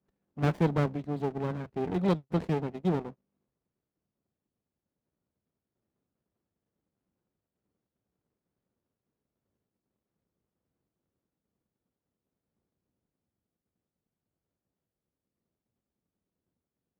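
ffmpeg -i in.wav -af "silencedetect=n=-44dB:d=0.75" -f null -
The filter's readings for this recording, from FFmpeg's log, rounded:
silence_start: 3.12
silence_end: 17.00 | silence_duration: 13.88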